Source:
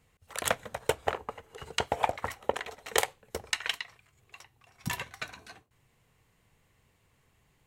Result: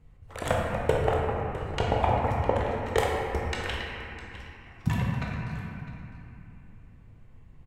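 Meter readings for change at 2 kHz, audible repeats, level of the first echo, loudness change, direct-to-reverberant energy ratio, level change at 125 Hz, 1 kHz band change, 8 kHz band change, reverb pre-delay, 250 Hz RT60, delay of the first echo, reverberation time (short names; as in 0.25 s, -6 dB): +1.0 dB, 1, -15.5 dB, +4.5 dB, -3.5 dB, +16.5 dB, +5.0 dB, -9.0 dB, 18 ms, 3.7 s, 0.656 s, 2.8 s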